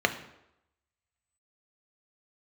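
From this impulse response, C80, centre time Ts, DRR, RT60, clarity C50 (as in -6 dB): 15.0 dB, 9 ms, 6.0 dB, 0.85 s, 12.0 dB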